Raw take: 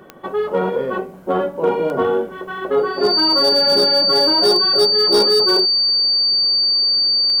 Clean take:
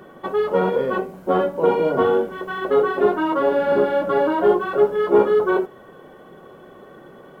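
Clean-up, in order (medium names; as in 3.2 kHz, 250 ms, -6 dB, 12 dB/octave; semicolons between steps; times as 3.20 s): clip repair -8.5 dBFS; de-click; band-stop 4.6 kHz, Q 30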